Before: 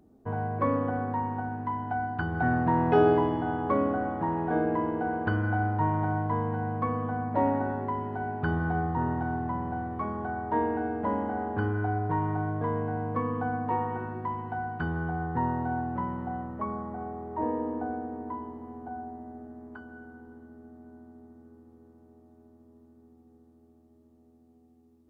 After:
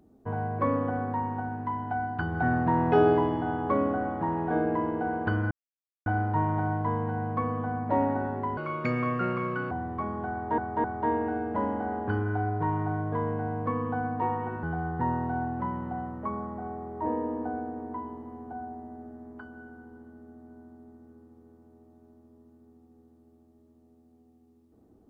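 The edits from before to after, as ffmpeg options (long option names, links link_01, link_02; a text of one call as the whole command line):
ffmpeg -i in.wav -filter_complex "[0:a]asplit=7[link_01][link_02][link_03][link_04][link_05][link_06][link_07];[link_01]atrim=end=5.51,asetpts=PTS-STARTPTS,afade=type=out:start_time=5.506:duration=0.004:curve=hsin,apad=pad_dur=0.55[link_08];[link_02]atrim=start=5.51:end=8.024,asetpts=PTS-STARTPTS,afade=type=in:duration=0.004:curve=hsin[link_09];[link_03]atrim=start=8.02:end=9.72,asetpts=PTS-STARTPTS,asetrate=65709,aresample=44100,atrim=end_sample=50315,asetpts=PTS-STARTPTS[link_10];[link_04]atrim=start=9.716:end=10.592[link_11];[link_05]atrim=start=10.328:end=10.592[link_12];[link_06]atrim=start=10.328:end=14.122[link_13];[link_07]atrim=start=14.988[link_14];[link_08][link_09]concat=n=2:v=0:a=1[link_15];[link_15][link_10]acrossfade=duration=0.004:curve1=hsin:curve2=hsin[link_16];[link_16][link_11]acrossfade=duration=0.004:curve1=hsin:curve2=hsin[link_17];[link_17][link_12]acrossfade=duration=0.004:curve1=hsin:curve2=hsin[link_18];[link_18][link_13]acrossfade=duration=0.004:curve1=hsin:curve2=hsin[link_19];[link_19][link_14]acrossfade=duration=0.004:curve1=hsin:curve2=hsin" out.wav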